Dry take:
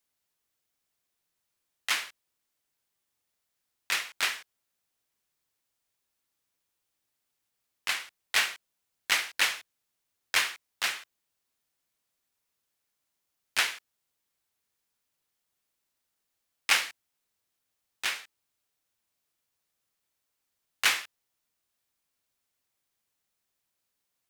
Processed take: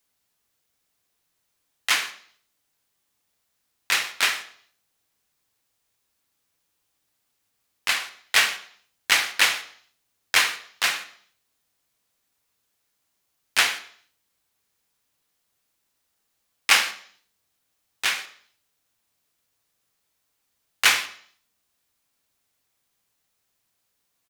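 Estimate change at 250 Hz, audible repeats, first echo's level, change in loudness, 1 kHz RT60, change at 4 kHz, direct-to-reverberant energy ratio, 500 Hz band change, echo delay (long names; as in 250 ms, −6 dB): +7.5 dB, 1, −22.0 dB, +6.5 dB, 0.55 s, +7.0 dB, 9.0 dB, +7.0 dB, 124 ms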